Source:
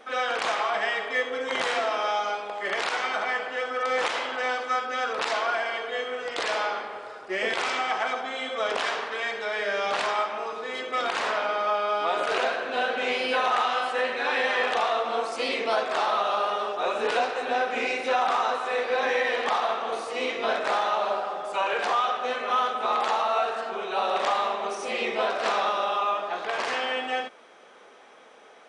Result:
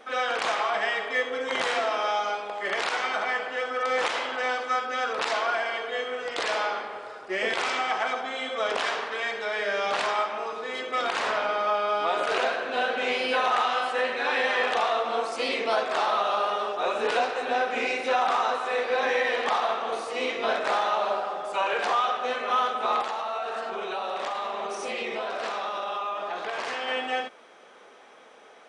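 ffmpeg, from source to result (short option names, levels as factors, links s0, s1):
-filter_complex "[0:a]asettb=1/sr,asplit=3[s0][s1][s2];[s0]atrim=end=11.274[s3];[s1]atrim=start=11.27:end=12.07,asetpts=PTS-STARTPTS,afade=t=in:d=0.004:c=qsin,afade=t=out:st=0.796:d=0.004:c=qsin,lowshelf=f=86:g=11[s4];[s2]atrim=start=12.066[s5];[s3][s4]acrossfade=d=0.004:c1=hsin:c2=qsin[s6];[s6][s5]acrossfade=d=0.004:c1=qsin:c2=hsin,asettb=1/sr,asplit=3[s7][s8][s9];[s7]atrim=end=23.014[s10];[s8]atrim=start=23.01:end=26.88,asetpts=PTS-STARTPTS,afade=t=in:d=0.004:c=qsin,afade=t=out:st=3.866:d=0.004:c=qsin,acompressor=threshold=0.0447:ratio=6:attack=3.2:release=140:knee=1:detection=peak[s11];[s9]atrim=start=26.876[s12];[s10][s11]acrossfade=d=0.004:c1=hsin:c2=qsin[s13];[s13][s12]acrossfade=d=0.004:c1=qsin:c2=hsin"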